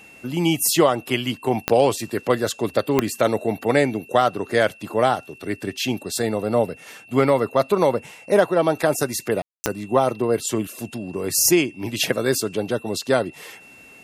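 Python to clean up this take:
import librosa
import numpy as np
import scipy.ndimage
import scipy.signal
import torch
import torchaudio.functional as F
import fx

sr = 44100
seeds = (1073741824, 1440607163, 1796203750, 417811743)

y = fx.fix_declip(x, sr, threshold_db=-5.0)
y = fx.fix_declick_ar(y, sr, threshold=10.0)
y = fx.notch(y, sr, hz=2700.0, q=30.0)
y = fx.fix_ambience(y, sr, seeds[0], print_start_s=13.52, print_end_s=14.02, start_s=9.42, end_s=9.64)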